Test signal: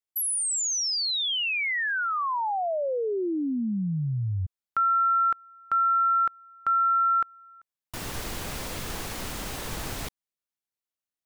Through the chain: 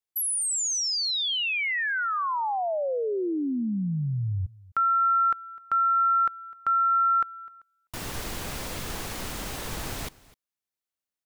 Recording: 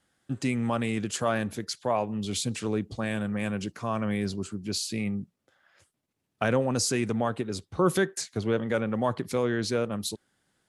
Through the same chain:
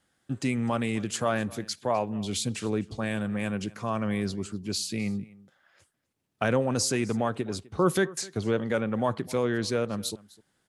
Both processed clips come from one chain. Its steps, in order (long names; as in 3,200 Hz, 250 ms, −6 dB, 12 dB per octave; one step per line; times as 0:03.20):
single-tap delay 254 ms −22 dB